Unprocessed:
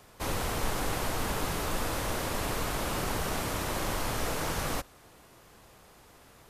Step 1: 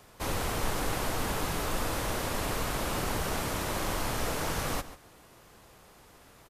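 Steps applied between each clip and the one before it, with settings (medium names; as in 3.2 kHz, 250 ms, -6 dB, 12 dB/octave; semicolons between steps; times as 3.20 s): echo from a far wall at 24 m, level -14 dB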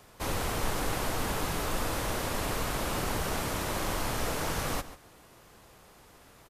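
no audible change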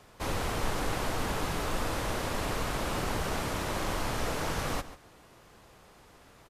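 treble shelf 9.8 kHz -9.5 dB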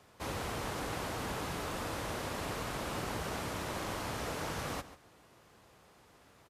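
high-pass 61 Hz; trim -5 dB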